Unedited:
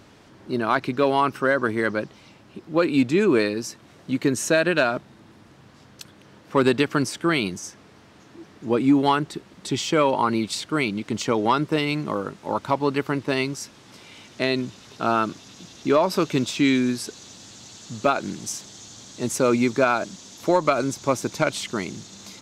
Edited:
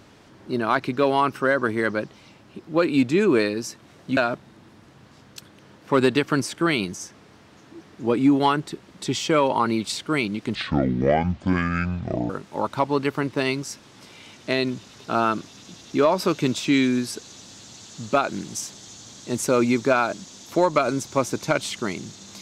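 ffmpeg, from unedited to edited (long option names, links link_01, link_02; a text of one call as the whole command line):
ffmpeg -i in.wav -filter_complex "[0:a]asplit=4[link_01][link_02][link_03][link_04];[link_01]atrim=end=4.172[link_05];[link_02]atrim=start=4.798:end=11.184[link_06];[link_03]atrim=start=11.18:end=12.21,asetpts=PTS-STARTPTS,asetrate=26019,aresample=44100,atrim=end_sample=76988,asetpts=PTS-STARTPTS[link_07];[link_04]atrim=start=12.206[link_08];[link_05][link_06]acrossfade=duration=0.004:curve1=hsin:curve2=hsin[link_09];[link_09][link_07]acrossfade=duration=0.004:curve1=hsin:curve2=hsin[link_10];[link_10][link_08]acrossfade=duration=0.004:curve1=hsin:curve2=hsin" out.wav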